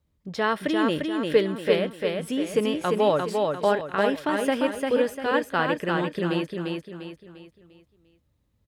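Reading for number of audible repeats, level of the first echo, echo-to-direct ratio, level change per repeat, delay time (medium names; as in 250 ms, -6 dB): 4, -3.5 dB, -2.5 dB, -8.0 dB, 348 ms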